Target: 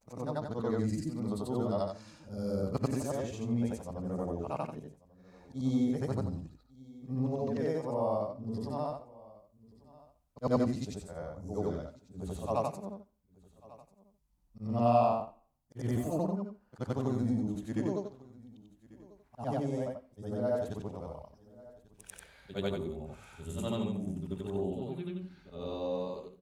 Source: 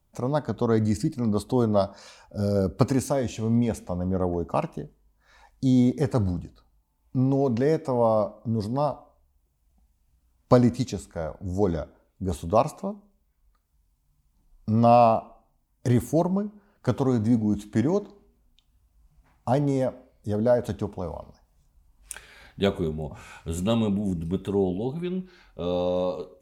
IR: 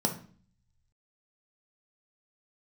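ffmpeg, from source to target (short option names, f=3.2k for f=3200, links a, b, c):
-af "afftfilt=real='re':imag='-im':win_size=8192:overlap=0.75,aecho=1:1:1143:0.0794,volume=-5dB"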